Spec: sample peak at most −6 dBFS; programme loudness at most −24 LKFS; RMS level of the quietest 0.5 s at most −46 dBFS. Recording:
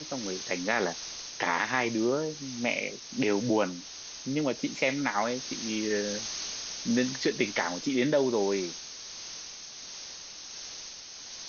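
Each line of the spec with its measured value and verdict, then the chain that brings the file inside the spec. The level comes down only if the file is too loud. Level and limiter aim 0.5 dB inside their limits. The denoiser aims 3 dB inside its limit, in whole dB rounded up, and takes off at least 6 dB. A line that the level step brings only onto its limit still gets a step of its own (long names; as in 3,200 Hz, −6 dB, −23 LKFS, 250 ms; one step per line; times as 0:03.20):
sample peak −11.0 dBFS: in spec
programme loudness −30.5 LKFS: in spec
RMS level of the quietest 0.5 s −44 dBFS: out of spec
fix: broadband denoise 6 dB, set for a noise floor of −44 dBFS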